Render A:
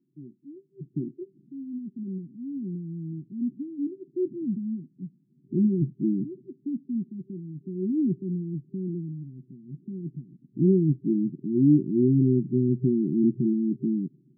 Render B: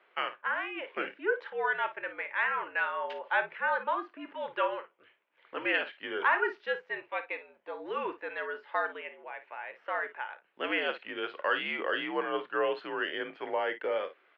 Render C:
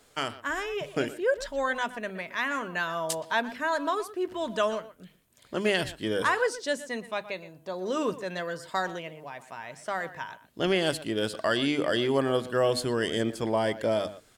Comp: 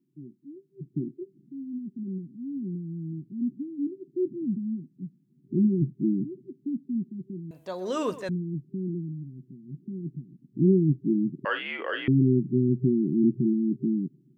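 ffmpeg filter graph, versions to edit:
-filter_complex "[0:a]asplit=3[a][b][c];[a]atrim=end=7.512[d];[2:a]atrim=start=7.508:end=8.292[e];[b]atrim=start=8.288:end=11.452[f];[1:a]atrim=start=11.448:end=12.082[g];[c]atrim=start=12.078[h];[d][e]acrossfade=d=0.004:c1=hsin:c2=hsin[i];[i][f]acrossfade=d=0.004:c1=hsin:c2=hsin[j];[j][g]acrossfade=d=0.004:c1=hsin:c2=hsin[k];[k][h]acrossfade=d=0.004:c1=hsin:c2=hsin"

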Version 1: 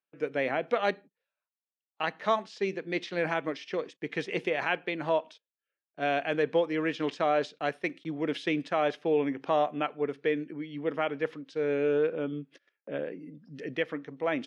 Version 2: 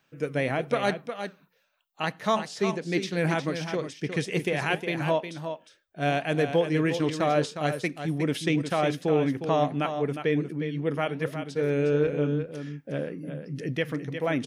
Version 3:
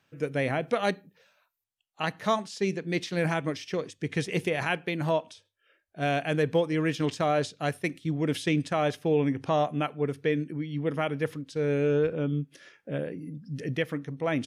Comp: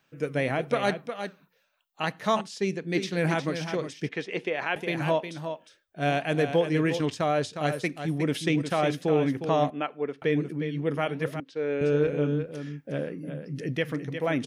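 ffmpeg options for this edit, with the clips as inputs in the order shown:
-filter_complex "[2:a]asplit=2[a][b];[0:a]asplit=3[c][d][e];[1:a]asplit=6[f][g][h][i][j][k];[f]atrim=end=2.412[l];[a]atrim=start=2.408:end=2.952[m];[g]atrim=start=2.948:end=4.092[n];[c]atrim=start=4.088:end=4.762[o];[h]atrim=start=4.758:end=7.012[p];[b]atrim=start=7.008:end=7.532[q];[i]atrim=start=7.528:end=9.702[r];[d]atrim=start=9.698:end=10.222[s];[j]atrim=start=10.218:end=11.402[t];[e]atrim=start=11.398:end=11.812[u];[k]atrim=start=11.808[v];[l][m]acrossfade=d=0.004:c1=hsin:c2=hsin[w];[w][n]acrossfade=d=0.004:c1=hsin:c2=hsin[x];[x][o]acrossfade=d=0.004:c1=hsin:c2=hsin[y];[y][p]acrossfade=d=0.004:c1=hsin:c2=hsin[z];[z][q]acrossfade=d=0.004:c1=hsin:c2=hsin[aa];[aa][r]acrossfade=d=0.004:c1=hsin:c2=hsin[ab];[ab][s]acrossfade=d=0.004:c1=hsin:c2=hsin[ac];[ac][t]acrossfade=d=0.004:c1=hsin:c2=hsin[ad];[ad][u]acrossfade=d=0.004:c1=hsin:c2=hsin[ae];[ae][v]acrossfade=d=0.004:c1=hsin:c2=hsin"

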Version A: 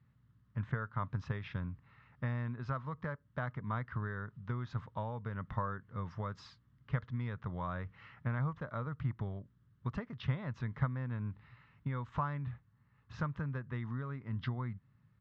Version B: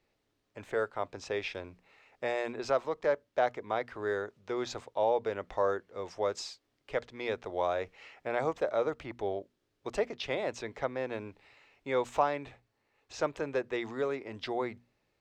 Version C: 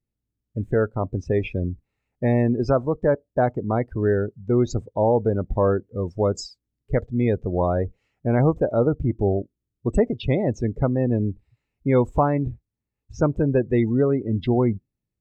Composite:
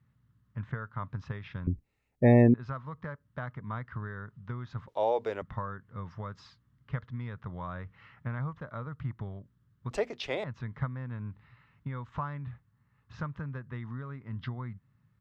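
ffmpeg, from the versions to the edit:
-filter_complex "[1:a]asplit=2[a][b];[0:a]asplit=4[c][d][e][f];[c]atrim=end=1.672[g];[2:a]atrim=start=1.668:end=2.542[h];[d]atrim=start=2.538:end=4.882[i];[a]atrim=start=4.878:end=5.422[j];[e]atrim=start=5.418:end=9.912[k];[b]atrim=start=9.908:end=10.442[l];[f]atrim=start=10.438[m];[g][h]acrossfade=d=0.004:c1=hsin:c2=hsin[n];[n][i]acrossfade=d=0.004:c1=hsin:c2=hsin[o];[o][j]acrossfade=d=0.004:c1=hsin:c2=hsin[p];[p][k]acrossfade=d=0.004:c1=hsin:c2=hsin[q];[q][l]acrossfade=d=0.004:c1=hsin:c2=hsin[r];[r][m]acrossfade=d=0.004:c1=hsin:c2=hsin"

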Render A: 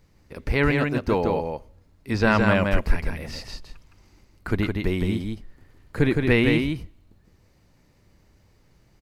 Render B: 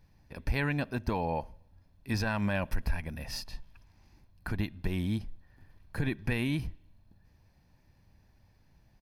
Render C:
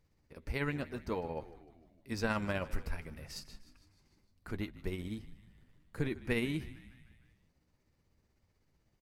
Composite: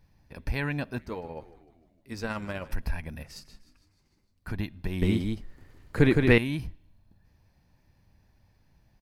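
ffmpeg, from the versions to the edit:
-filter_complex "[2:a]asplit=2[a][b];[1:a]asplit=4[c][d][e][f];[c]atrim=end=0.992[g];[a]atrim=start=0.988:end=2.722[h];[d]atrim=start=2.718:end=3.232[i];[b]atrim=start=3.228:end=4.472[j];[e]atrim=start=4.468:end=5.022[k];[0:a]atrim=start=5.018:end=6.382[l];[f]atrim=start=6.378[m];[g][h]acrossfade=d=0.004:c1=hsin:c2=hsin[n];[n][i]acrossfade=d=0.004:c1=hsin:c2=hsin[o];[o][j]acrossfade=d=0.004:c1=hsin:c2=hsin[p];[p][k]acrossfade=d=0.004:c1=hsin:c2=hsin[q];[q][l]acrossfade=d=0.004:c1=hsin:c2=hsin[r];[r][m]acrossfade=d=0.004:c1=hsin:c2=hsin"

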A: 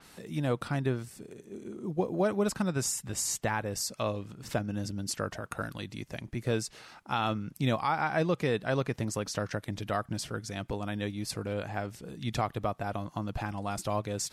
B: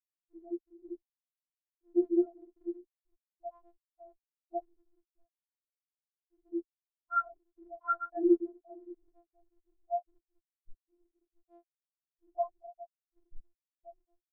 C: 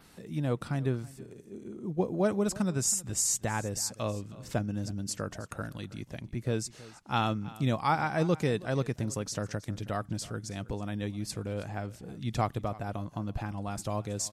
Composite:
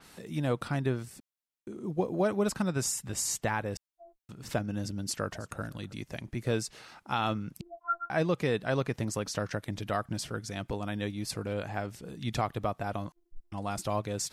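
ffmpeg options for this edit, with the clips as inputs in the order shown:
-filter_complex "[1:a]asplit=4[a][b][c][d];[0:a]asplit=6[e][f][g][h][i][j];[e]atrim=end=1.202[k];[a]atrim=start=1.198:end=1.672[l];[f]atrim=start=1.668:end=3.772[m];[b]atrim=start=3.768:end=4.292[n];[g]atrim=start=4.288:end=5.372[o];[2:a]atrim=start=5.368:end=5.932[p];[h]atrim=start=5.928:end=7.612[q];[c]atrim=start=7.608:end=8.102[r];[i]atrim=start=8.098:end=13.122[s];[d]atrim=start=13.118:end=13.522[t];[j]atrim=start=13.518[u];[k][l]acrossfade=d=0.004:c1=hsin:c2=hsin[v];[v][m]acrossfade=d=0.004:c1=hsin:c2=hsin[w];[w][n]acrossfade=d=0.004:c1=hsin:c2=hsin[x];[x][o]acrossfade=d=0.004:c1=hsin:c2=hsin[y];[y][p]acrossfade=d=0.004:c1=hsin:c2=hsin[z];[z][q]acrossfade=d=0.004:c1=hsin:c2=hsin[aa];[aa][r]acrossfade=d=0.004:c1=hsin:c2=hsin[ab];[ab][s]acrossfade=d=0.004:c1=hsin:c2=hsin[ac];[ac][t]acrossfade=d=0.004:c1=hsin:c2=hsin[ad];[ad][u]acrossfade=d=0.004:c1=hsin:c2=hsin"

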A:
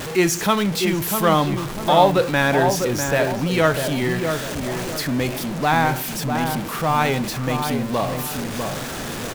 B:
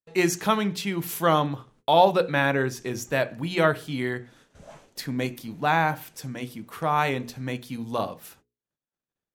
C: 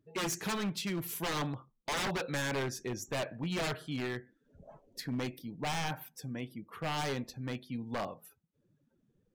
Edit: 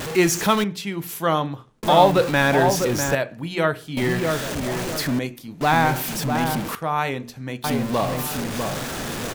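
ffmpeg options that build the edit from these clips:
-filter_complex "[1:a]asplit=4[a][b][c][d];[0:a]asplit=5[e][f][g][h][i];[e]atrim=end=0.642[j];[a]atrim=start=0.638:end=1.832[k];[f]atrim=start=1.828:end=3.152[l];[b]atrim=start=3.148:end=3.972[m];[g]atrim=start=3.968:end=5.192[n];[c]atrim=start=5.188:end=5.612[o];[h]atrim=start=5.608:end=6.752[p];[d]atrim=start=6.748:end=7.642[q];[i]atrim=start=7.638[r];[j][k]acrossfade=d=0.004:c1=hsin:c2=hsin[s];[s][l]acrossfade=d=0.004:c1=hsin:c2=hsin[t];[t][m]acrossfade=d=0.004:c1=hsin:c2=hsin[u];[u][n]acrossfade=d=0.004:c1=hsin:c2=hsin[v];[v][o]acrossfade=d=0.004:c1=hsin:c2=hsin[w];[w][p]acrossfade=d=0.004:c1=hsin:c2=hsin[x];[x][q]acrossfade=d=0.004:c1=hsin:c2=hsin[y];[y][r]acrossfade=d=0.004:c1=hsin:c2=hsin"

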